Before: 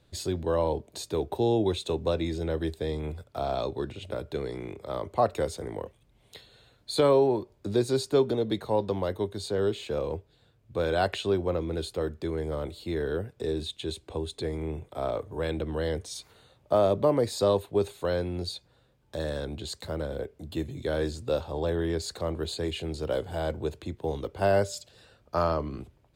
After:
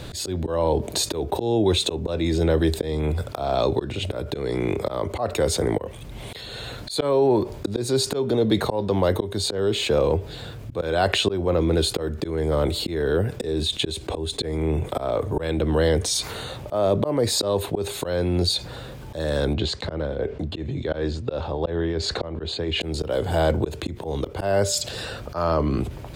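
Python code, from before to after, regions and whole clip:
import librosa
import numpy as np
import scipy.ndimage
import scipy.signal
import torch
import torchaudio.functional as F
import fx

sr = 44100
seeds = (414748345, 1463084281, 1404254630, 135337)

y = fx.chain(x, sr, fx.lowpass(hz=3800.0, slope=12),
    fx.tremolo_shape(shape='triangle', hz=2.8, depth_pct=80), at=(19.53, 22.81))
y = fx.auto_swell(y, sr, attack_ms=382.0)
y = fx.env_flatten(y, sr, amount_pct=50)
y = y * 10.0 ** (8.0 / 20.0)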